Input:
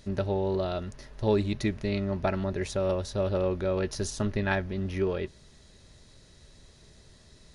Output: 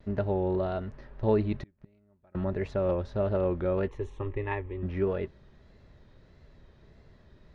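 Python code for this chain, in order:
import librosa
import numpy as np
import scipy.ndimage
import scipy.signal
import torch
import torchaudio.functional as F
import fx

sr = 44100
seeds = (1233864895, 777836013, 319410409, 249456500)

y = scipy.signal.sosfilt(scipy.signal.butter(2, 1900.0, 'lowpass', fs=sr, output='sos'), x)
y = fx.vibrato(y, sr, rate_hz=1.6, depth_cents=72.0)
y = fx.gate_flip(y, sr, shuts_db=-28.0, range_db=-35, at=(1.57, 2.35))
y = fx.fixed_phaser(y, sr, hz=990.0, stages=8, at=(3.88, 4.83))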